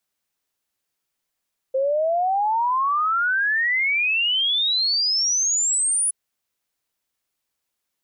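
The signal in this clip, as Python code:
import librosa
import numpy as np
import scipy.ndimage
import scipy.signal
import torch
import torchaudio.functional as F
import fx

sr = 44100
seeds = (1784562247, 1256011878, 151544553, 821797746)

y = fx.ess(sr, length_s=4.37, from_hz=520.0, to_hz=10000.0, level_db=-18.0)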